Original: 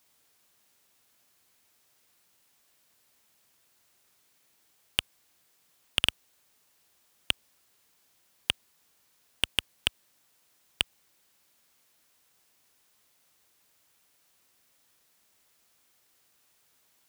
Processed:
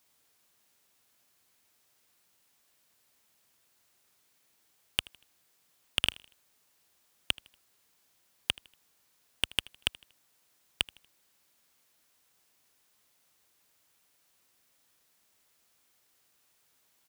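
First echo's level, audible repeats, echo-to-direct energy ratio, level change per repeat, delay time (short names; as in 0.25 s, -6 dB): -22.5 dB, 2, -22.0 dB, -8.0 dB, 79 ms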